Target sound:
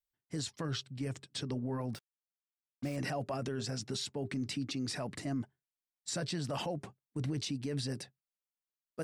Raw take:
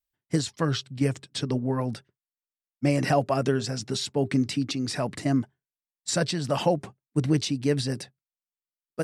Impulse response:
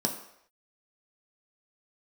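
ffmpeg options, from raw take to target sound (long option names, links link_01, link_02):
-filter_complex "[0:a]alimiter=limit=-21.5dB:level=0:latency=1:release=19,asplit=3[link_01][link_02][link_03];[link_01]afade=type=out:start_time=1.93:duration=0.02[link_04];[link_02]acrusher=bits=6:mix=0:aa=0.5,afade=type=in:start_time=1.93:duration=0.02,afade=type=out:start_time=2.95:duration=0.02[link_05];[link_03]afade=type=in:start_time=2.95:duration=0.02[link_06];[link_04][link_05][link_06]amix=inputs=3:normalize=0,volume=-6.5dB"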